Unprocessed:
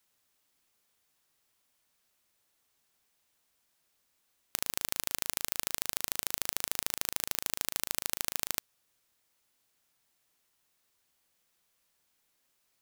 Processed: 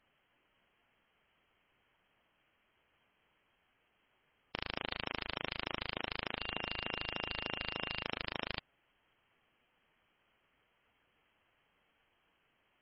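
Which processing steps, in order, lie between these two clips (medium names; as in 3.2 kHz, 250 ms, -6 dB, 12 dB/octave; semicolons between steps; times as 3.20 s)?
6.39–8.02 s: whistle 410 Hz -52 dBFS; frequency inversion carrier 3.2 kHz; hard clipper -29.5 dBFS, distortion -6 dB; trim +7.5 dB; MP3 16 kbps 22.05 kHz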